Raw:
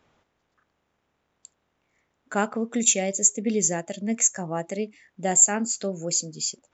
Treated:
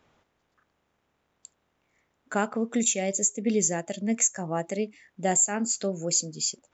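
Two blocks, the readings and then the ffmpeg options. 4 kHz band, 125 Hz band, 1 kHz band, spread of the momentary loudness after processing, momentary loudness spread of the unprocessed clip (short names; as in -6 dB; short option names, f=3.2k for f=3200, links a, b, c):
-1.5 dB, -0.5 dB, -1.5 dB, 9 LU, 14 LU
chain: -af "alimiter=limit=-12.5dB:level=0:latency=1:release=240"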